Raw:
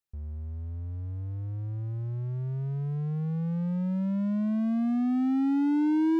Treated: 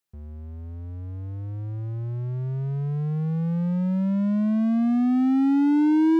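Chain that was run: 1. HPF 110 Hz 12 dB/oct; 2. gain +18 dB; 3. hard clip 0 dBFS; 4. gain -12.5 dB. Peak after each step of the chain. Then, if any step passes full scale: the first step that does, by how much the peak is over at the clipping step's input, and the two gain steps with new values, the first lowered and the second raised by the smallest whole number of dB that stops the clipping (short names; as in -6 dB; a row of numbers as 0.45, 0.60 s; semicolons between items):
-19.5, -1.5, -1.5, -14.0 dBFS; no overload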